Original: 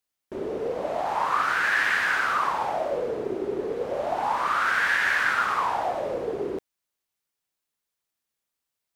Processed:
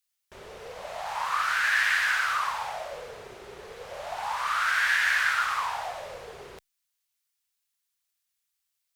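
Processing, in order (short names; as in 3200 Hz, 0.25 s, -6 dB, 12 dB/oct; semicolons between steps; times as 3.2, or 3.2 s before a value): passive tone stack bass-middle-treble 10-0-10; gain +4.5 dB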